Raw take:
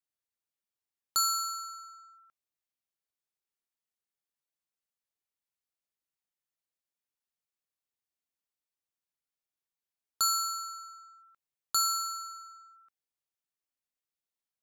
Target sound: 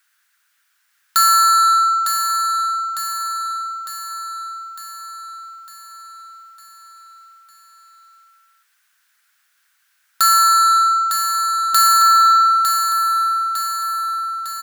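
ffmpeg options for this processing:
ffmpeg -i in.wav -filter_complex "[0:a]asplit=2[link_01][link_02];[link_02]acompressor=threshold=-39dB:ratio=6,volume=-3dB[link_03];[link_01][link_03]amix=inputs=2:normalize=0,highpass=frequency=1500:width_type=q:width=4.7,apsyclip=26dB,asoftclip=type=tanh:threshold=-6.5dB,aecho=1:1:904|1808|2712|3616|4520|5424|6328:0.501|0.286|0.163|0.0928|0.0529|0.0302|0.0172,volume=-4.5dB" out.wav

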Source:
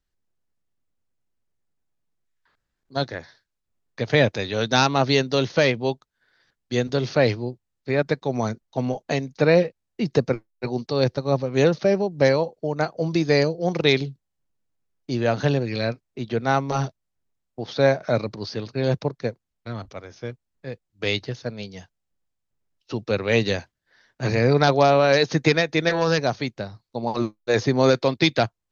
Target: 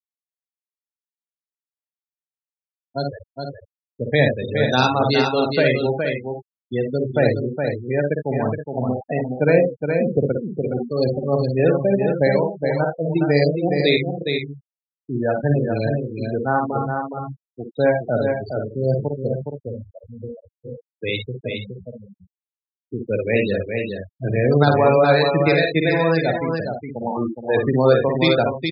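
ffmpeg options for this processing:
ffmpeg -i in.wav -filter_complex "[0:a]asplit=2[link_01][link_02];[link_02]aecho=0:1:55|76:0.631|0.376[link_03];[link_01][link_03]amix=inputs=2:normalize=0,afftfilt=real='re*gte(hypot(re,im),0.126)':imag='im*gte(hypot(re,im),0.126)':win_size=1024:overlap=0.75,asplit=2[link_04][link_05];[link_05]aecho=0:1:416:0.531[link_06];[link_04][link_06]amix=inputs=2:normalize=0" out.wav

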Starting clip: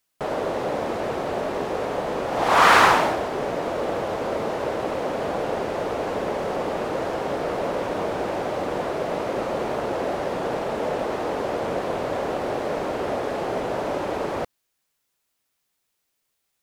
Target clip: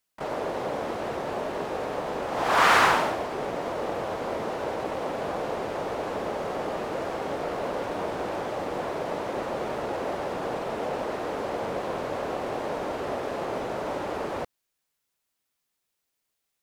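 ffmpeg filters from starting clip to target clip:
ffmpeg -i in.wav -filter_complex "[0:a]asplit=2[link_01][link_02];[link_02]asetrate=66075,aresample=44100,atempo=0.66742,volume=-8dB[link_03];[link_01][link_03]amix=inputs=2:normalize=0,volume=-5dB" out.wav

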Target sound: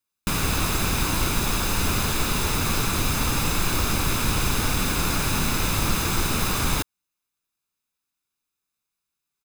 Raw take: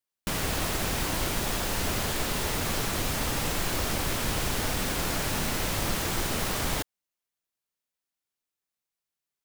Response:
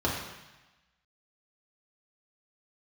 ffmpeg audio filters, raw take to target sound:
-af "aecho=1:1:0.8:0.47,volume=4dB"

